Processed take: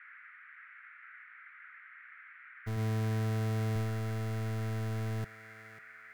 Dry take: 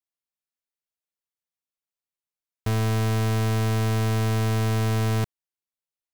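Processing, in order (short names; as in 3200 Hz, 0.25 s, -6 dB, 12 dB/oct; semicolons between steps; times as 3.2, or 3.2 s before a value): G.711 law mismatch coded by A; 2.76–3.76 HPF 60 Hz; expander -15 dBFS; tilt shelf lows +3 dB, about 740 Hz; in parallel at -1 dB: limiter -33.5 dBFS, peak gain reduction 7 dB; on the sum: band noise 1300–2200 Hz -51 dBFS; on a send: thinning echo 0.544 s, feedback 38%, high-pass 420 Hz, level -13 dB; on the sum: gain -2.5 dB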